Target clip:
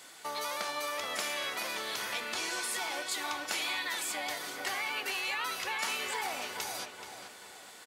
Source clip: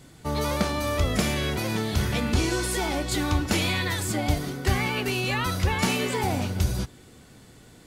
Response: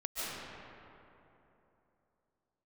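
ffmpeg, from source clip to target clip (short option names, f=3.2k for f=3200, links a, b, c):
-filter_complex "[0:a]highpass=830,acompressor=threshold=-46dB:ratio=2,asplit=2[a][b];[b]adelay=429,lowpass=f=2.6k:p=1,volume=-6dB,asplit=2[c][d];[d]adelay=429,lowpass=f=2.6k:p=1,volume=0.43,asplit=2[e][f];[f]adelay=429,lowpass=f=2.6k:p=1,volume=0.43,asplit=2[g][h];[h]adelay=429,lowpass=f=2.6k:p=1,volume=0.43,asplit=2[i][j];[j]adelay=429,lowpass=f=2.6k:p=1,volume=0.43[k];[a][c][e][g][i][k]amix=inputs=6:normalize=0,volume=5dB"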